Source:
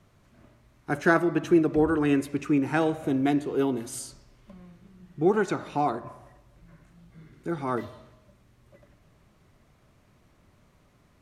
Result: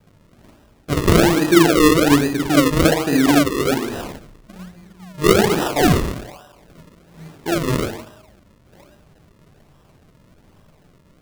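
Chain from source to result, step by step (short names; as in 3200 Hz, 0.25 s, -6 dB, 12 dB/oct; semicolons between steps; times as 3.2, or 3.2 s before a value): Schroeder reverb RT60 0.58 s, DRR -2 dB; 5.61–7.58 overdrive pedal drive 14 dB, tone 2600 Hz, clips at -11 dBFS; decimation with a swept rate 39×, swing 100% 1.2 Hz; gain +5 dB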